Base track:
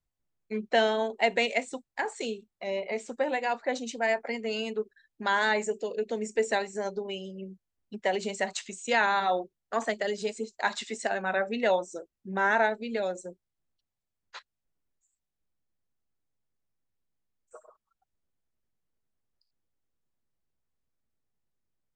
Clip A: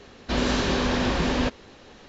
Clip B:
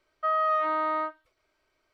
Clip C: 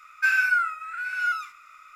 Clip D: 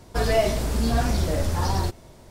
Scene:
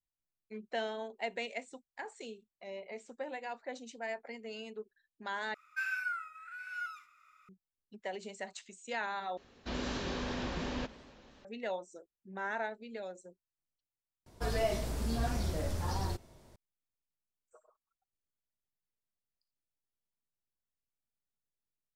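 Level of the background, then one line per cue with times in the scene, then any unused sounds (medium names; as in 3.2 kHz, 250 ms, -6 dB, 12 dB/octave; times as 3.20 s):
base track -12.5 dB
5.54 s: replace with C -14.5 dB
9.37 s: replace with A -13.5 dB + modulated delay 93 ms, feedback 78%, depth 215 cents, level -20.5 dB
14.26 s: replace with D -11 dB
not used: B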